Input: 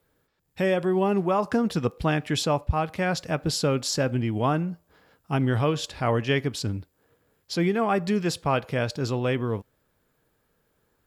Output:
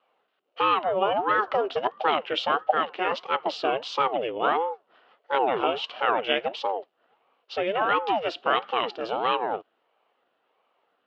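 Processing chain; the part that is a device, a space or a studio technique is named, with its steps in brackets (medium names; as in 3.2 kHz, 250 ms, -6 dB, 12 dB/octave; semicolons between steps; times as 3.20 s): voice changer toy (ring modulator with a swept carrier 440 Hz, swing 60%, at 1.5 Hz; cabinet simulation 450–3700 Hz, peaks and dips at 460 Hz +5 dB, 750 Hz +3 dB, 1.3 kHz +5 dB, 2 kHz -4 dB, 2.9 kHz +9 dB); trim +2.5 dB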